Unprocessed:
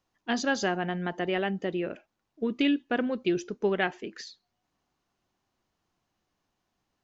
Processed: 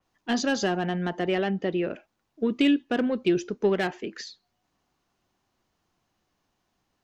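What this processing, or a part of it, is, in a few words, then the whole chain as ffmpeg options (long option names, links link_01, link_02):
one-band saturation: -filter_complex "[0:a]acrossover=split=540|3000[link_01][link_02][link_03];[link_02]asoftclip=type=tanh:threshold=-31dB[link_04];[link_01][link_04][link_03]amix=inputs=3:normalize=0,asettb=1/sr,asplit=3[link_05][link_06][link_07];[link_05]atrim=end=1.354[link_08];[link_06]atrim=start=1.35:end=1.87,asetpts=PTS-STARTPTS,afade=type=in:duration=0.004:curve=qsin,afade=type=out:start_time=0.516:duration=0.004:curve=qsin,lowpass=frequency=6100:width=0.5412,lowpass=frequency=6100:width=1.3066[link_09];[link_07]atrim=start=1.866[link_10];[link_08][link_09]acrossfade=duration=0.004:curve1=hsin:curve2=qsin[link_11];[link_11][link_10]acrossfade=duration=0.004:curve1=qsin:curve2=hsin,adynamicequalizer=threshold=0.00316:dfrequency=4100:dqfactor=0.7:tfrequency=4100:tqfactor=0.7:attack=5:release=100:ratio=0.375:range=2:mode=cutabove:tftype=highshelf,volume=4dB"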